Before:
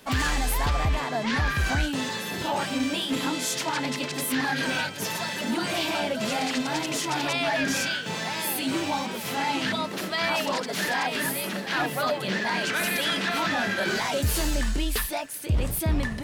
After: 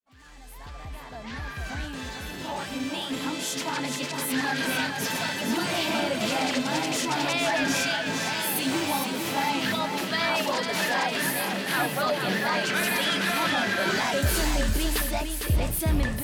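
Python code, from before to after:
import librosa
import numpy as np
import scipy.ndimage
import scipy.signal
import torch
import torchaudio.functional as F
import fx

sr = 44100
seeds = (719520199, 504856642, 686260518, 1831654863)

y = fx.fade_in_head(x, sr, length_s=5.0)
y = fx.high_shelf(y, sr, hz=11000.0, db=8.5, at=(8.56, 9.1))
y = fx.echo_feedback(y, sr, ms=455, feedback_pct=27, wet_db=-6)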